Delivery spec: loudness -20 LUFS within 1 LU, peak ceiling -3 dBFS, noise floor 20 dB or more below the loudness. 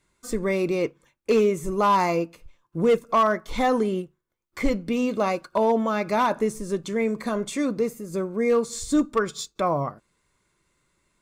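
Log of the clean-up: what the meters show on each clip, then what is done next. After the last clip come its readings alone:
clipped 0.4%; flat tops at -13.5 dBFS; loudness -24.5 LUFS; peak -13.5 dBFS; loudness target -20.0 LUFS
-> clip repair -13.5 dBFS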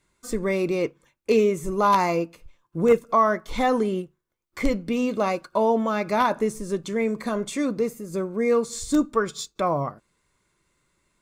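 clipped 0.0%; loudness -24.0 LUFS; peak -4.5 dBFS; loudness target -20.0 LUFS
-> gain +4 dB; limiter -3 dBFS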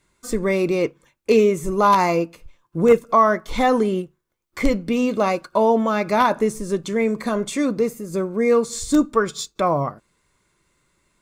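loudness -20.0 LUFS; peak -3.0 dBFS; noise floor -70 dBFS

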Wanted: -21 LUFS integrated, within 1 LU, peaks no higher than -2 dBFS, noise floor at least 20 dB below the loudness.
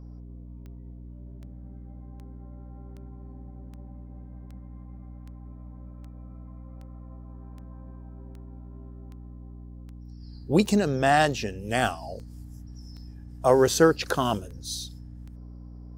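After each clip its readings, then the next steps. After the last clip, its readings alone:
clicks 20; hum 60 Hz; harmonics up to 300 Hz; hum level -40 dBFS; loudness -24.5 LUFS; peak -6.0 dBFS; loudness target -21.0 LUFS
-> de-click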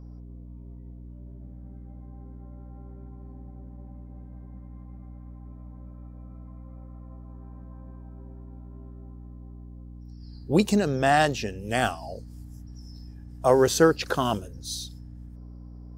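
clicks 0; hum 60 Hz; harmonics up to 300 Hz; hum level -40 dBFS
-> notches 60/120/180/240/300 Hz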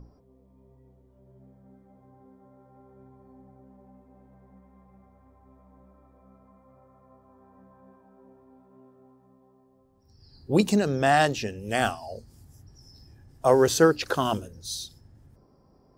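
hum none; loudness -24.0 LUFS; peak -6.0 dBFS; loudness target -21.0 LUFS
-> gain +3 dB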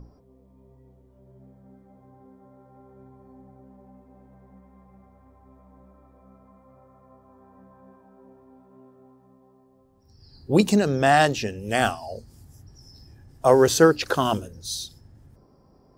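loudness -21.0 LUFS; peak -3.0 dBFS; noise floor -58 dBFS

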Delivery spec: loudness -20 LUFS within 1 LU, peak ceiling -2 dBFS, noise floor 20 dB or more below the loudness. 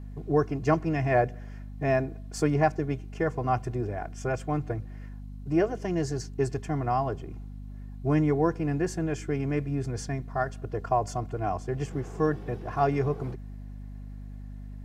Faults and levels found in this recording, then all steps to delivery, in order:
hum 50 Hz; harmonics up to 250 Hz; hum level -38 dBFS; loudness -29.0 LUFS; peak -8.5 dBFS; loudness target -20.0 LUFS
-> de-hum 50 Hz, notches 5; gain +9 dB; limiter -2 dBFS

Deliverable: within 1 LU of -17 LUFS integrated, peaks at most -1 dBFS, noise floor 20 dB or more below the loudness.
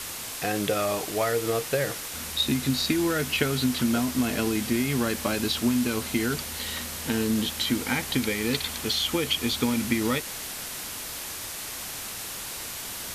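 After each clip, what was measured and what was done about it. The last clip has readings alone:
noise floor -36 dBFS; noise floor target -47 dBFS; loudness -27.0 LUFS; peak -9.0 dBFS; loudness target -17.0 LUFS
-> noise print and reduce 11 dB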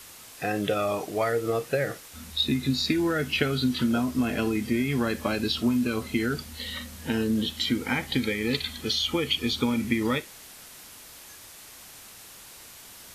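noise floor -47 dBFS; loudness -27.0 LUFS; peak -9.5 dBFS; loudness target -17.0 LUFS
-> gain +10 dB; limiter -1 dBFS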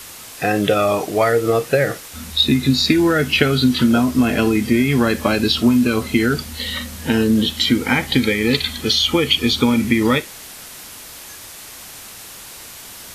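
loudness -17.0 LUFS; peak -1.0 dBFS; noise floor -37 dBFS

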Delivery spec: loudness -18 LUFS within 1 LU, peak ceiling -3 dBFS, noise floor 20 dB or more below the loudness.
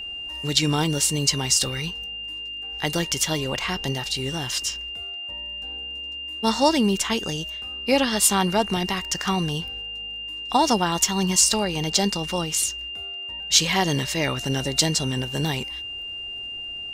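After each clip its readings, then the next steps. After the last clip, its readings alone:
ticks 21/s; steady tone 2800 Hz; tone level -31 dBFS; loudness -23.5 LUFS; peak -3.5 dBFS; loudness target -18.0 LUFS
-> de-click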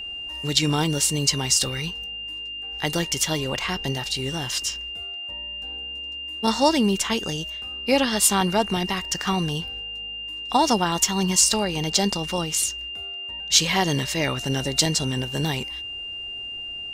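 ticks 0.35/s; steady tone 2800 Hz; tone level -31 dBFS
-> notch 2800 Hz, Q 30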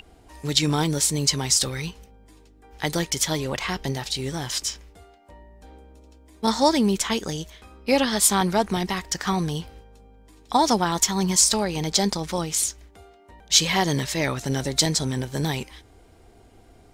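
steady tone none; loudness -23.0 LUFS; peak -3.5 dBFS; loudness target -18.0 LUFS
-> gain +5 dB; limiter -3 dBFS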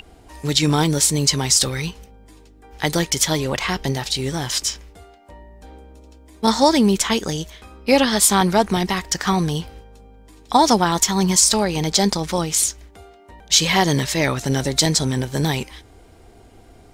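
loudness -18.5 LUFS; peak -3.0 dBFS; noise floor -48 dBFS

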